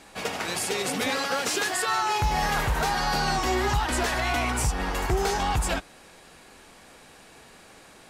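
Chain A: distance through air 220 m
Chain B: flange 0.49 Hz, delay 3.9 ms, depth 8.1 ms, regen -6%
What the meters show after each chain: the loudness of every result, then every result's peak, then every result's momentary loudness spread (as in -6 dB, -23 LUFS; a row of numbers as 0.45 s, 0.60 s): -27.5 LUFS, -29.0 LUFS; -17.0 dBFS, -17.0 dBFS; 5 LU, 4 LU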